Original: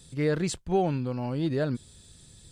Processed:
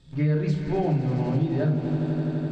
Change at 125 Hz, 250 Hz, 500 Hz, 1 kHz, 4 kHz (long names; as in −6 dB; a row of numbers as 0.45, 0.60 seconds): +8.5 dB, +5.0 dB, +0.5 dB, −0.5 dB, can't be measured